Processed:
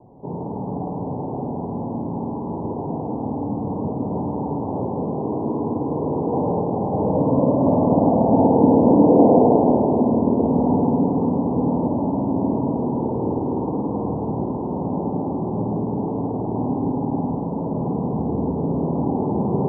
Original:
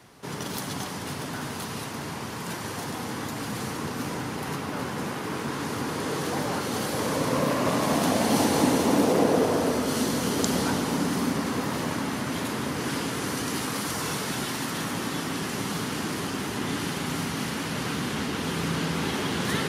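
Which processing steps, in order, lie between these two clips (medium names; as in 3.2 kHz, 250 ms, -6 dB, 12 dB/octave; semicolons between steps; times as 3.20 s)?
steep low-pass 930 Hz 72 dB/octave; spring tank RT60 3.4 s, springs 52 ms, chirp 50 ms, DRR 0.5 dB; trim +6 dB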